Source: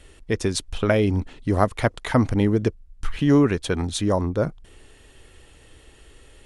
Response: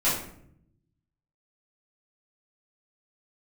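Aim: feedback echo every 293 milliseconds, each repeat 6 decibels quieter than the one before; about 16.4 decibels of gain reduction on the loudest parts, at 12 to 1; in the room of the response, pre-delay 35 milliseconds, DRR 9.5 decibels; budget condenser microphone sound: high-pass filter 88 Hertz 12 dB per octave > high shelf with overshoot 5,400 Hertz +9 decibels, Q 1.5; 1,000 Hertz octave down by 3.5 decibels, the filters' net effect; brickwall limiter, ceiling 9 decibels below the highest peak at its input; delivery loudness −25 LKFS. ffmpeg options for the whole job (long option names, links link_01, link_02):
-filter_complex "[0:a]equalizer=frequency=1000:width_type=o:gain=-4.5,acompressor=threshold=-30dB:ratio=12,alimiter=level_in=5dB:limit=-24dB:level=0:latency=1,volume=-5dB,aecho=1:1:293|586|879|1172|1465|1758:0.501|0.251|0.125|0.0626|0.0313|0.0157,asplit=2[link_01][link_02];[1:a]atrim=start_sample=2205,adelay=35[link_03];[link_02][link_03]afir=irnorm=-1:irlink=0,volume=-22.5dB[link_04];[link_01][link_04]amix=inputs=2:normalize=0,highpass=88,highshelf=frequency=5400:width_type=q:width=1.5:gain=9,volume=13dB"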